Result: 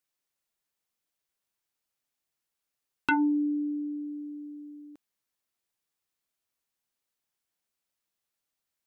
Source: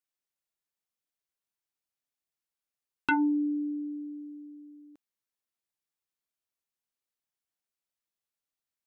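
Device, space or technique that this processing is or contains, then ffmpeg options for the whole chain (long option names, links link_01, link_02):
parallel compression: -filter_complex "[0:a]asplit=2[link_01][link_02];[link_02]acompressor=threshold=-45dB:ratio=6,volume=-1.5dB[link_03];[link_01][link_03]amix=inputs=2:normalize=0"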